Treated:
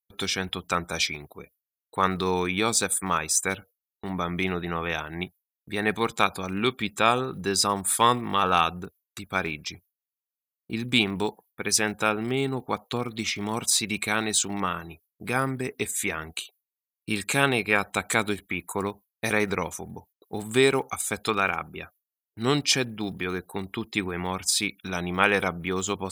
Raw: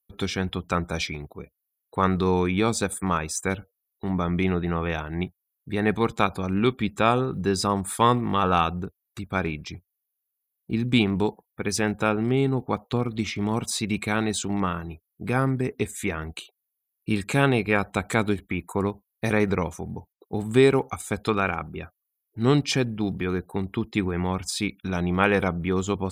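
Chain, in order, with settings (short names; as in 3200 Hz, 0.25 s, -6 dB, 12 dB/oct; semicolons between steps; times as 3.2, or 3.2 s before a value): tilt +2.5 dB/oct; gate with hold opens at -45 dBFS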